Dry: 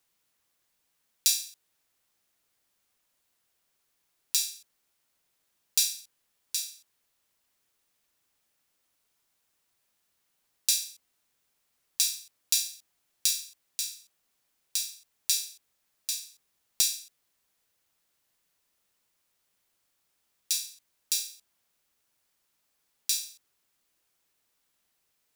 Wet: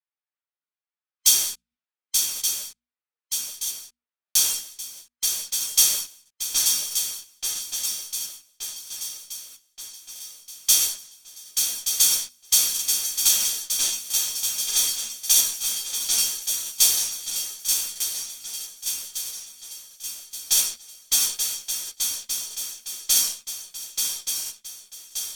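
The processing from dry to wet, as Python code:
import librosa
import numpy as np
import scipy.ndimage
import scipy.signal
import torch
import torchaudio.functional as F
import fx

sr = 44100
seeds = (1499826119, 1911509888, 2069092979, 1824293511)

p1 = fx.band_invert(x, sr, width_hz=1000)
p2 = fx.noise_reduce_blind(p1, sr, reduce_db=12)
p3 = fx.env_lowpass(p2, sr, base_hz=1700.0, full_db=-27.5)
p4 = fx.tilt_eq(p3, sr, slope=4.0)
p5 = fx.fuzz(p4, sr, gain_db=37.0, gate_db=-45.0)
p6 = p4 + F.gain(torch.from_numpy(p5), -7.5).numpy()
p7 = fx.hum_notches(p6, sr, base_hz=60, count=4)
p8 = p7 + fx.echo_swing(p7, sr, ms=1176, ratio=3, feedback_pct=53, wet_db=-5, dry=0)
p9 = fx.buffer_crackle(p8, sr, first_s=0.36, period_s=0.65, block=2048, kind='repeat')
p10 = fx.ensemble(p9, sr)
y = F.gain(torch.from_numpy(p10), -2.0).numpy()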